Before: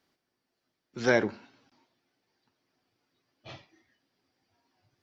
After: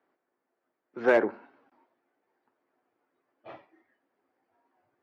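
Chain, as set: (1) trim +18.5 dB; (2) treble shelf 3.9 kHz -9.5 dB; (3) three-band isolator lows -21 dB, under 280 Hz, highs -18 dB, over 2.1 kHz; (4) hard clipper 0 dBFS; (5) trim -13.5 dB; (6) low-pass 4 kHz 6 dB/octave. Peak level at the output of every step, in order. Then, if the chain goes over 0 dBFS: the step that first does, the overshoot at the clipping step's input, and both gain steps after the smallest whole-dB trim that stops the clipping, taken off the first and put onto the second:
+9.0 dBFS, +8.5 dBFS, +4.5 dBFS, 0.0 dBFS, -13.5 dBFS, -13.5 dBFS; step 1, 4.5 dB; step 1 +13.5 dB, step 5 -8.5 dB

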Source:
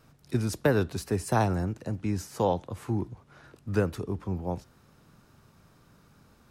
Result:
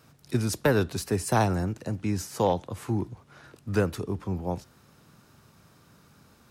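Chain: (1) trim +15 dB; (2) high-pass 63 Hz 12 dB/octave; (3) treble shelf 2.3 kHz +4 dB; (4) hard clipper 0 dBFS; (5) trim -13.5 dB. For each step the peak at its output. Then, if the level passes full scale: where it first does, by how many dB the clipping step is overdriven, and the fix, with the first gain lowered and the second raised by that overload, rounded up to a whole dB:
+5.5 dBFS, +4.5 dBFS, +5.0 dBFS, 0.0 dBFS, -13.5 dBFS; step 1, 5.0 dB; step 1 +10 dB, step 5 -8.5 dB

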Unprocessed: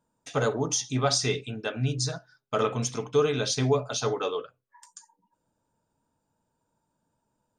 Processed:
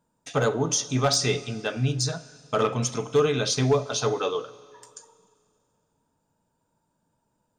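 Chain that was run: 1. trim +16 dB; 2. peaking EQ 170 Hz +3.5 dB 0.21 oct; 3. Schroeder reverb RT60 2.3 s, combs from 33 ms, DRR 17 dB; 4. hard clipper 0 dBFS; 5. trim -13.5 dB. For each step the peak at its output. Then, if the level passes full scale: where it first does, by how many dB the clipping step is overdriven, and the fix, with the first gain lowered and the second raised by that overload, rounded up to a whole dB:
+5.0 dBFS, +5.0 dBFS, +5.0 dBFS, 0.0 dBFS, -13.5 dBFS; step 1, 5.0 dB; step 1 +11 dB, step 5 -8.5 dB

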